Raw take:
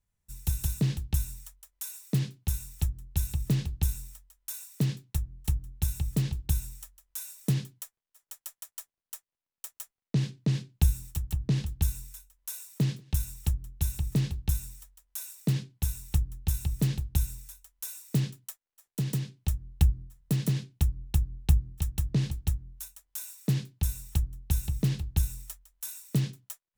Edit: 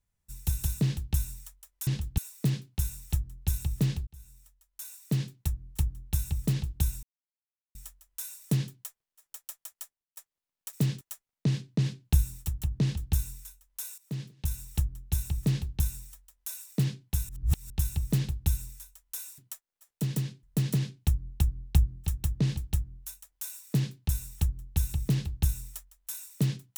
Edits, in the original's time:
3.76–4.95 fade in
6.72 insert silence 0.72 s
8.76–9.14 fade out
11.52–11.83 copy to 1.87
12.67–13.44 fade in, from -14 dB
15.98–16.39 reverse
18.07–18.35 move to 9.7
19.4–20.17 cut

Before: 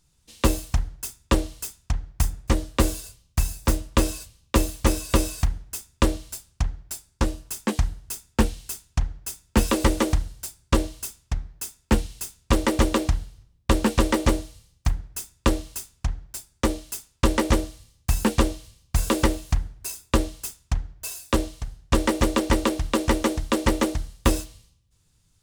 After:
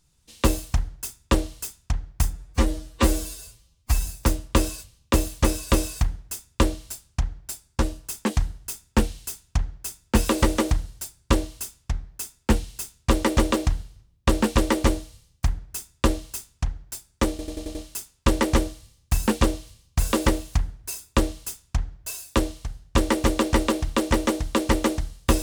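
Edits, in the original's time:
2.33–3.49 stretch 1.5×
16.72 stutter 0.09 s, 6 plays

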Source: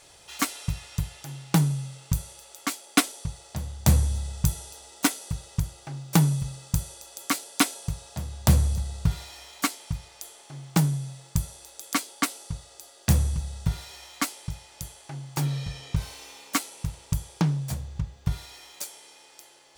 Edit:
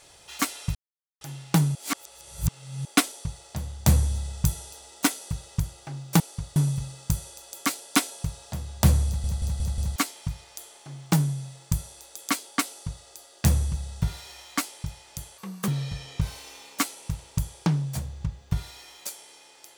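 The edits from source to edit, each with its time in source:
0.75–1.21 mute
1.75–2.85 reverse
8.7 stutter in place 0.18 s, 5 plays
12.32–12.68 copy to 6.2
15.02–15.43 speed 136%

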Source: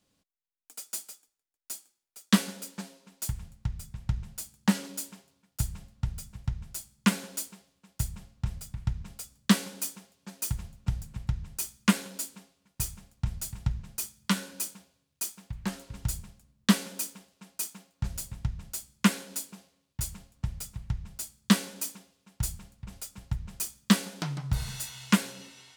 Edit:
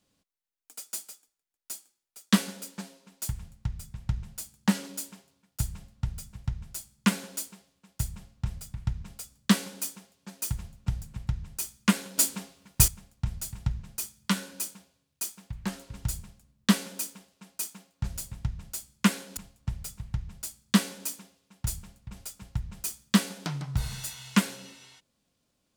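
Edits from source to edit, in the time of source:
12.18–12.88 gain +12 dB
19.37–20.13 cut

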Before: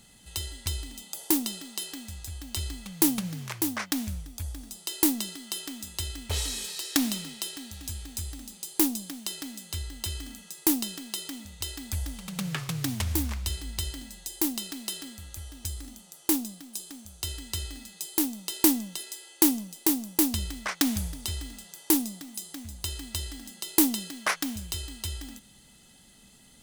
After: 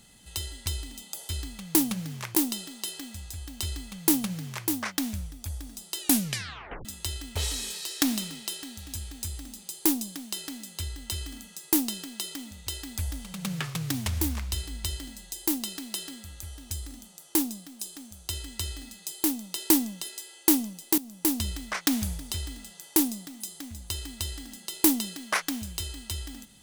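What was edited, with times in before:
2.56–3.62 copy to 1.29
4.94 tape stop 0.85 s
19.92–20.45 fade in equal-power, from -15.5 dB

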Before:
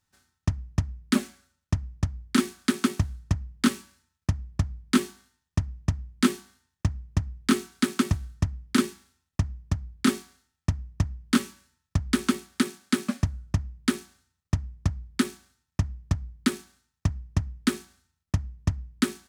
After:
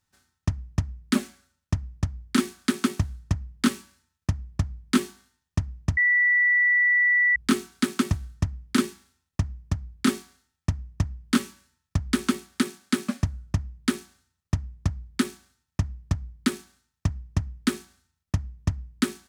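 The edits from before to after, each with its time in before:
5.97–7.36 bleep 1960 Hz -17 dBFS

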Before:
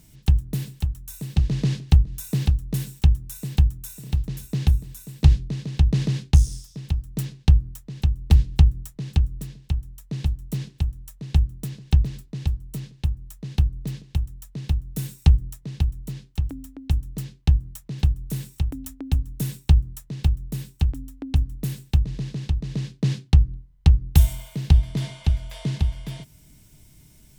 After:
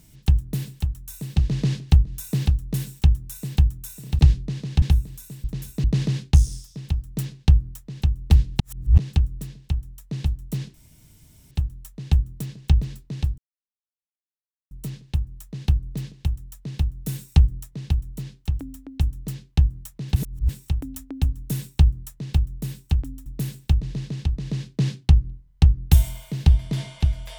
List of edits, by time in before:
4.19–4.59 swap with 5.21–5.84
8.6–8.98 reverse
10.74 insert room tone 0.77 s
12.61 insert silence 1.33 s
18.06–18.39 reverse
21.16–21.5 cut

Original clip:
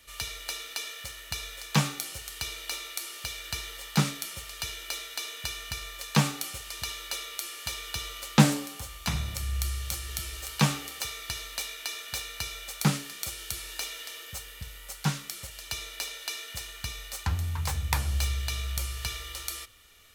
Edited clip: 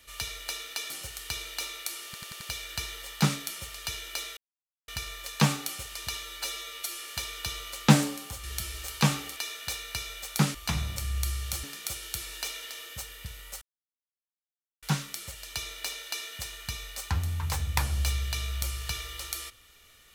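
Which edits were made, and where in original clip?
0.9–2.01 cut
3.16 stutter 0.09 s, 5 plays
5.12–5.63 mute
6.98–7.49 stretch 1.5×
8.93–10.02 move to 13
10.95–11.82 cut
14.98 insert silence 1.21 s

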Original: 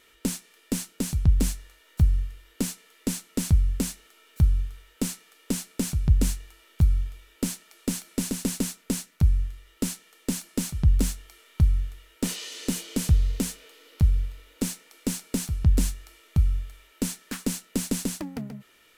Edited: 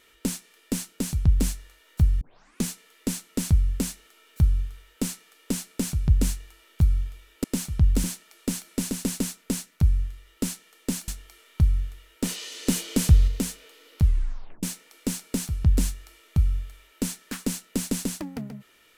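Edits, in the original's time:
2.21 tape start 0.45 s
10.48–11.08 move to 7.44
12.67–13.28 gain +4 dB
14.03 tape stop 0.60 s

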